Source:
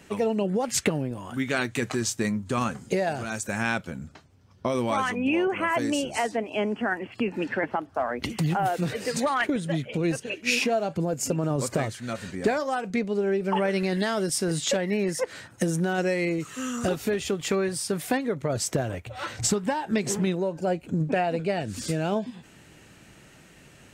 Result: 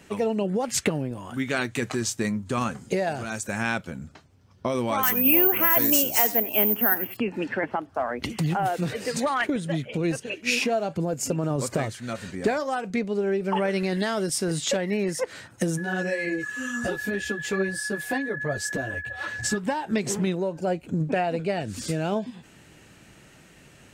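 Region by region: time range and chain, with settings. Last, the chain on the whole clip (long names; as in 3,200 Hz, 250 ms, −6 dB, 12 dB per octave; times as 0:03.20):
0:05.03–0:07.17: high-shelf EQ 4,800 Hz +10 dB + single-tap delay 91 ms −18 dB + bad sample-rate conversion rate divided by 3×, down none, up zero stuff
0:15.77–0:19.56: steady tone 1,700 Hz −28 dBFS + string-ensemble chorus
whole clip: no processing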